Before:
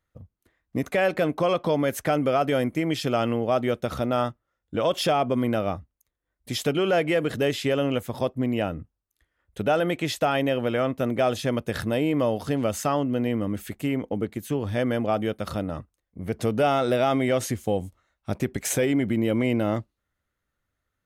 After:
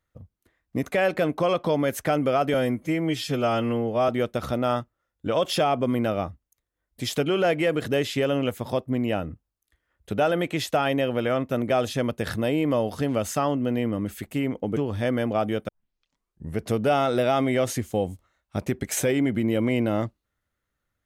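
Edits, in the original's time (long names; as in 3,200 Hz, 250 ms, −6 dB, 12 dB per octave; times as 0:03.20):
0:02.54–0:03.57: time-stretch 1.5×
0:14.25–0:14.50: remove
0:15.42: tape start 0.91 s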